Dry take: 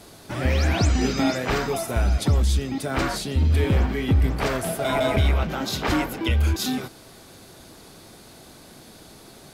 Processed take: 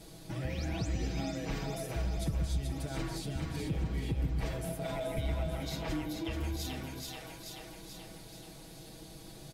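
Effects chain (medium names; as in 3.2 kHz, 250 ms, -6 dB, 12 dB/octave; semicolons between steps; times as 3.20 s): peaking EQ 1.3 kHz -7 dB 0.87 oct; comb 6.2 ms, depth 81%; two-band feedback delay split 470 Hz, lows 134 ms, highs 432 ms, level -5 dB; compression 2:1, threshold -34 dBFS, peak gain reduction 11.5 dB; bass shelf 120 Hz +10 dB; trim -8.5 dB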